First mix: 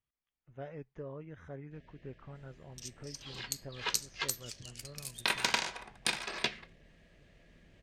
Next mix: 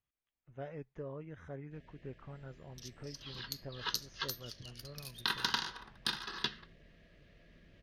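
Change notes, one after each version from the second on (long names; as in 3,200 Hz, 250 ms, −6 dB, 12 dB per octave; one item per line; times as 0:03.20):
second sound: add phaser with its sweep stopped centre 2,300 Hz, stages 6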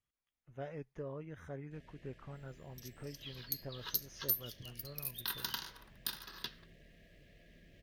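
second sound −10.0 dB
master: remove high-frequency loss of the air 94 metres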